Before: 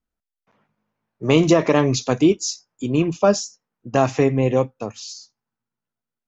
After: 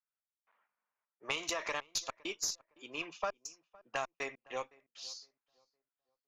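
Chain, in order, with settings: high-pass 1.2 kHz 12 dB/octave; level-controlled noise filter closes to 2 kHz, open at -24 dBFS; compression 6:1, threshold -27 dBFS, peak gain reduction 7.5 dB; trance gate "xx.xxxx.xxxx.x." 100 bpm -60 dB; Chebyshev shaper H 2 -14 dB, 3 -29 dB, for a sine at -15 dBFS; on a send: filtered feedback delay 511 ms, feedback 30%, low-pass 1.6 kHz, level -23 dB; on the sum: trim -4 dB

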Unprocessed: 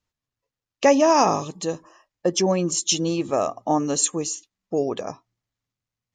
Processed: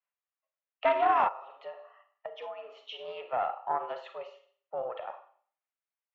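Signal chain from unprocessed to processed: mistuned SSB +97 Hz 480–2800 Hz; Schroeder reverb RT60 0.49 s, combs from 33 ms, DRR 6.5 dB; 1.28–3.08 s: compression 5:1, threshold -31 dBFS, peak gain reduction 13 dB; loudspeaker Doppler distortion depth 0.11 ms; trim -7.5 dB

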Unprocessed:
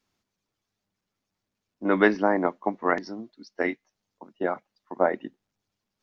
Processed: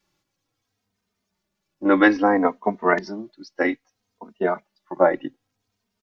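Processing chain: endless flanger 3 ms -0.62 Hz; trim +8 dB

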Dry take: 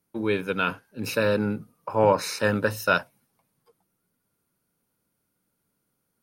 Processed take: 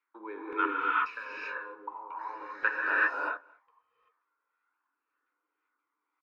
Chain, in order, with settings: Chebyshev band-pass 290–7400 Hz, order 5; resonant low shelf 800 Hz -9 dB, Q 3; 0.65–2.62 s: compression 8:1, threshold -36 dBFS, peak gain reduction 18 dB; LFO low-pass saw down 1.9 Hz 430–2500 Hz; flange 0.38 Hz, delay 0 ms, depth 2 ms, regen +1%; speakerphone echo 220 ms, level -26 dB; gated-style reverb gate 410 ms rising, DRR -6 dB; trim -5.5 dB

